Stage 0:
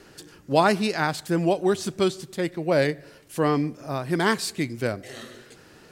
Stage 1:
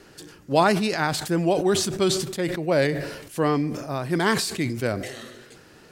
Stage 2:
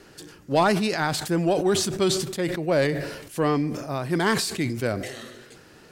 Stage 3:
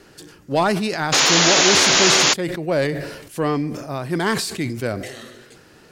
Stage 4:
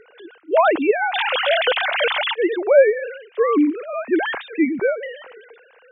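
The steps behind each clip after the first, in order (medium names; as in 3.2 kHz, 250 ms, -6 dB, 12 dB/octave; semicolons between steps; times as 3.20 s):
decay stretcher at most 57 dB/s
saturation -9.5 dBFS, distortion -23 dB
painted sound noise, 1.12–2.34 s, 240–7200 Hz -17 dBFS; trim +1.5 dB
formants replaced by sine waves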